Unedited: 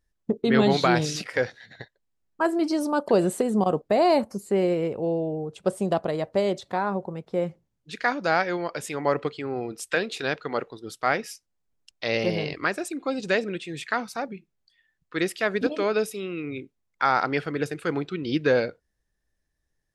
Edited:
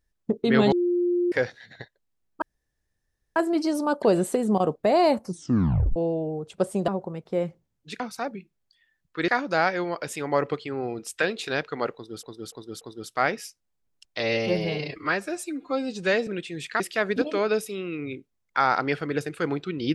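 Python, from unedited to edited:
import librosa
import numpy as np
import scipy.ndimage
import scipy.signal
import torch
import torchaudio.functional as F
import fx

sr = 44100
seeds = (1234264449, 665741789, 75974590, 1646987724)

y = fx.edit(x, sr, fx.bleep(start_s=0.72, length_s=0.6, hz=352.0, db=-20.0),
    fx.insert_room_tone(at_s=2.42, length_s=0.94),
    fx.tape_stop(start_s=4.31, length_s=0.71),
    fx.cut(start_s=5.94, length_s=0.95),
    fx.repeat(start_s=10.67, length_s=0.29, count=4),
    fx.stretch_span(start_s=12.06, length_s=1.38, factor=1.5),
    fx.move(start_s=13.97, length_s=1.28, to_s=8.01), tone=tone)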